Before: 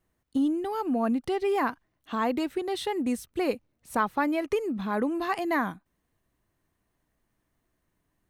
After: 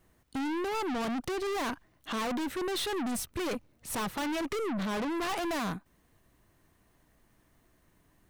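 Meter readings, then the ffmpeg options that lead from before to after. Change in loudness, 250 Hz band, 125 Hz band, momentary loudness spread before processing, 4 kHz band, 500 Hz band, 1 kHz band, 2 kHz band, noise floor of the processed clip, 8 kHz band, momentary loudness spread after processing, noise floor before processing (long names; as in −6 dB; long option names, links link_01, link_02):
−4.5 dB, −5.5 dB, +0.5 dB, 6 LU, +3.5 dB, −5.0 dB, −5.0 dB, −3.0 dB, −68 dBFS, +6.5 dB, 5 LU, −77 dBFS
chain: -af "aeval=exprs='(tanh(79.4*val(0)+0.55)-tanh(0.55))/79.4':channel_layout=same,aeval=exprs='0.02*sin(PI/2*1.41*val(0)/0.02)':channel_layout=same,volume=5dB"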